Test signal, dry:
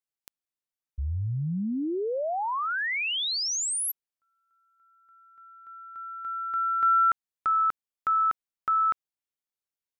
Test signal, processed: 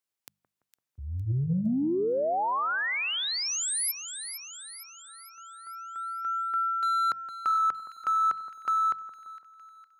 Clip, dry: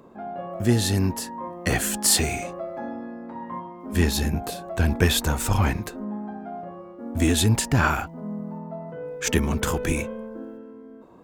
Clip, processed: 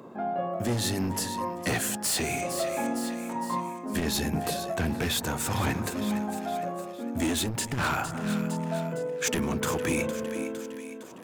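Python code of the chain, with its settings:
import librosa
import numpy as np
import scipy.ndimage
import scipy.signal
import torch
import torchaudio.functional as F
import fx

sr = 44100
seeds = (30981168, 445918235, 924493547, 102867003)

y = scipy.signal.sosfilt(scipy.signal.butter(4, 100.0, 'highpass', fs=sr, output='sos'), x)
y = fx.hum_notches(y, sr, base_hz=50, count=4)
y = np.clip(y, -10.0 ** (-21.0 / 20.0), 10.0 ** (-21.0 / 20.0))
y = fx.echo_split(y, sr, split_hz=1500.0, low_ms=169, high_ms=459, feedback_pct=52, wet_db=-14.0)
y = fx.rider(y, sr, range_db=4, speed_s=0.5)
y = fx.transformer_sat(y, sr, knee_hz=130.0)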